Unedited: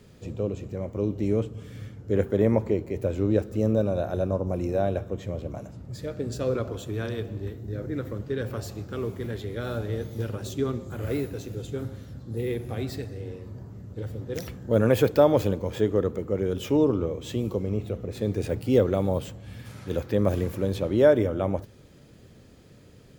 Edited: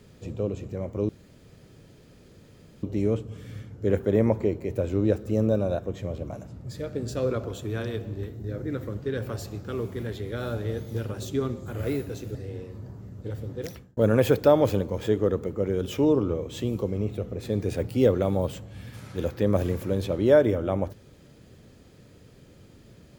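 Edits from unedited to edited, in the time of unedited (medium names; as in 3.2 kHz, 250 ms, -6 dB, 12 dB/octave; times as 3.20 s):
1.09 s: insert room tone 1.74 s
4.05–5.03 s: delete
11.59–13.07 s: delete
14.26–14.69 s: fade out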